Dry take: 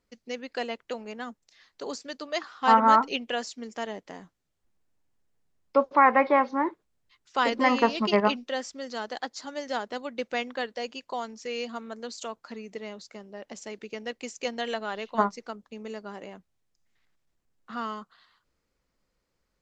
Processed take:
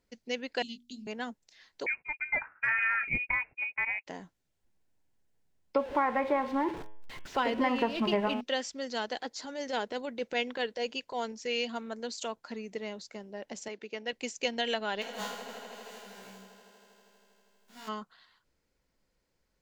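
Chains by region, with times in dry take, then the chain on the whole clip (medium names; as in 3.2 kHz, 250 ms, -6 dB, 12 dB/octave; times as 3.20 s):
0.62–1.07 s: elliptic band-stop 260–3500 Hz + hum notches 60/120/180/240/300/360 Hz + doubling 20 ms -8 dB
1.86–4.07 s: expander -41 dBFS + frequency inversion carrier 2.7 kHz + compression 4:1, threshold -24 dBFS
5.78–8.41 s: jump at every zero crossing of -33 dBFS + low-pass 1.4 kHz 6 dB/octave + de-hum 106.6 Hz, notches 32
9.16–11.32 s: peaking EQ 460 Hz +5 dB 0.33 oct + transient shaper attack -8 dB, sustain +1 dB
13.68–14.13 s: high-pass 350 Hz 6 dB/octave + distance through air 83 m
15.01–17.87 s: formants flattened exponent 0.3 + feedback comb 64 Hz, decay 0.78 s, mix 100% + echo with a slow build-up 80 ms, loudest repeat 5, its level -18 dB
whole clip: dynamic bell 3 kHz, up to +6 dB, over -45 dBFS, Q 1.4; band-stop 1.2 kHz, Q 7.2; compression 4:1, threshold -25 dBFS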